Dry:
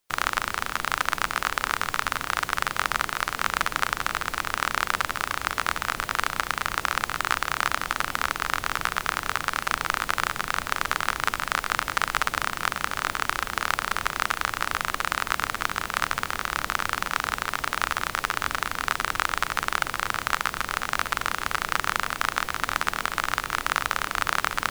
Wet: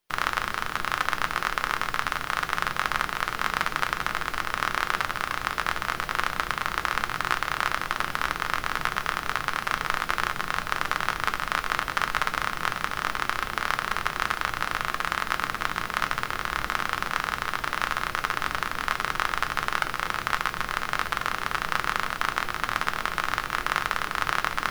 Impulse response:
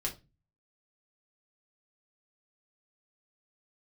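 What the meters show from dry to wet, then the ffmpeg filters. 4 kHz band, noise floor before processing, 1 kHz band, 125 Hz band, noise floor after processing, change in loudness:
−1.5 dB, −39 dBFS, −0.5 dB, +0.5 dB, −37 dBFS, −1.0 dB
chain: -filter_complex "[0:a]asplit=2[link_01][link_02];[link_02]lowpass=frequency=7900:width=0.5412,lowpass=frequency=7900:width=1.3066[link_03];[1:a]atrim=start_sample=2205[link_04];[link_03][link_04]afir=irnorm=-1:irlink=0,volume=-4.5dB[link_05];[link_01][link_05]amix=inputs=2:normalize=0,volume=-4.5dB"

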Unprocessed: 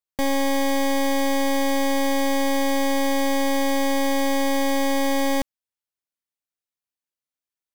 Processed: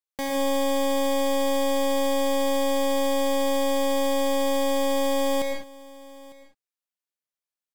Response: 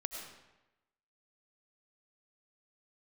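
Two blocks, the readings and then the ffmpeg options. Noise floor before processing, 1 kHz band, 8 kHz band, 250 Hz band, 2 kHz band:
below −85 dBFS, −3.0 dB, −2.5 dB, −4.5 dB, −7.0 dB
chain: -filter_complex "[0:a]lowshelf=frequency=190:gain=-9.5,aecho=1:1:903:0.0891[link_01];[1:a]atrim=start_sample=2205,afade=type=out:start_time=0.25:duration=0.01,atrim=end_sample=11466,asetrate=40572,aresample=44100[link_02];[link_01][link_02]afir=irnorm=-1:irlink=0,volume=-2.5dB"

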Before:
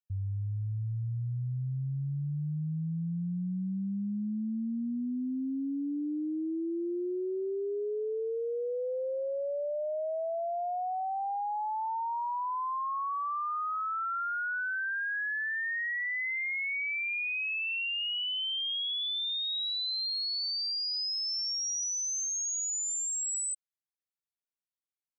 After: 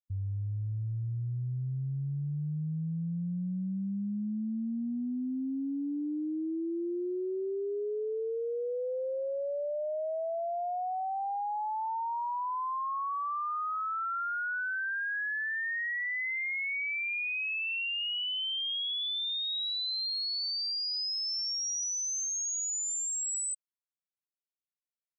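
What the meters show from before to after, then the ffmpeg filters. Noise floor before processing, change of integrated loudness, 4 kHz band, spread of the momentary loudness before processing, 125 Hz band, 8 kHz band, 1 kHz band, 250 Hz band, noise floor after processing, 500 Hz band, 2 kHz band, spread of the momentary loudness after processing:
below −85 dBFS, −0.5 dB, −0.5 dB, 5 LU, −0.5 dB, −0.5 dB, −0.5 dB, −0.5 dB, below −85 dBFS, −0.5 dB, −0.5 dB, 5 LU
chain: -af "aeval=exprs='sgn(val(0))*max(abs(val(0))-0.00112,0)':channel_layout=same,afftdn=noise_reduction=25:noise_floor=-45"

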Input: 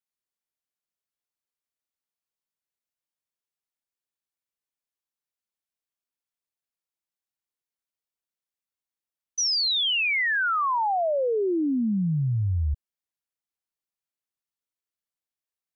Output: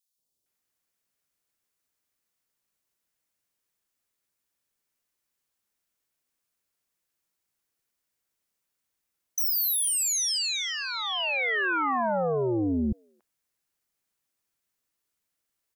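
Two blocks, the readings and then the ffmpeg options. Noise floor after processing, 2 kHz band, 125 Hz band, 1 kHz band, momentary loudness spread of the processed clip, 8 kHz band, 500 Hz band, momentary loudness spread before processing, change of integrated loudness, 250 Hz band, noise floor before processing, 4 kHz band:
−82 dBFS, −2.5 dB, −10.5 dB, −4.0 dB, 7 LU, can't be measured, −2.5 dB, 7 LU, −2.0 dB, −3.0 dB, below −85 dBFS, −4.0 dB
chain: -filter_complex "[0:a]aeval=exprs='0.0891*sin(PI/2*2.24*val(0)/0.0891)':channel_layout=same,acrossover=split=820|3500[link_01][link_02][link_03];[link_01]adelay=180[link_04];[link_02]adelay=460[link_05];[link_04][link_05][link_03]amix=inputs=3:normalize=0"

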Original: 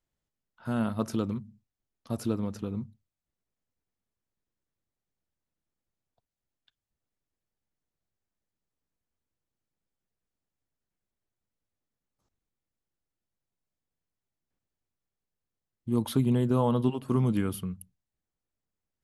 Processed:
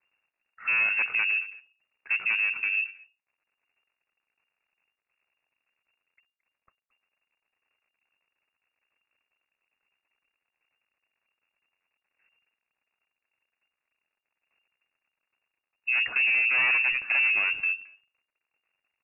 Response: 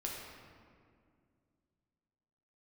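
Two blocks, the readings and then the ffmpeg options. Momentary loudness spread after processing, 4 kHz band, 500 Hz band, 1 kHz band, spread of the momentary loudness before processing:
11 LU, can't be measured, below −15 dB, −3.0 dB, 14 LU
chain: -filter_complex "[0:a]equalizer=frequency=310:width=1.2:gain=-5,asplit=2[link_01][link_02];[link_02]aeval=exprs='0.168*sin(PI/2*4.47*val(0)/0.168)':channel_layout=same,volume=-10.5dB[link_03];[link_01][link_03]amix=inputs=2:normalize=0,acrusher=bits=11:mix=0:aa=0.000001,asplit=2[link_04][link_05];[link_05]adelay=220,highpass=300,lowpass=3400,asoftclip=type=hard:threshold=-24.5dB,volume=-17dB[link_06];[link_04][link_06]amix=inputs=2:normalize=0,lowpass=frequency=2400:width_type=q:width=0.5098,lowpass=frequency=2400:width_type=q:width=0.6013,lowpass=frequency=2400:width_type=q:width=0.9,lowpass=frequency=2400:width_type=q:width=2.563,afreqshift=-2800"

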